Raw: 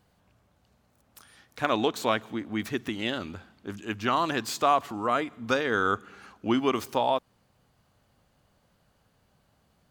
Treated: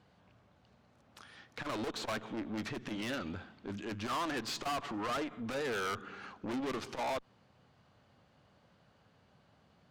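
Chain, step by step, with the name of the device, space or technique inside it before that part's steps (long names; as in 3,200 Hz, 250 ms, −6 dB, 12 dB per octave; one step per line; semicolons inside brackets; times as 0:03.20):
valve radio (band-pass filter 85–4,600 Hz; tube saturation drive 35 dB, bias 0.3; saturating transformer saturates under 160 Hz)
level +2.5 dB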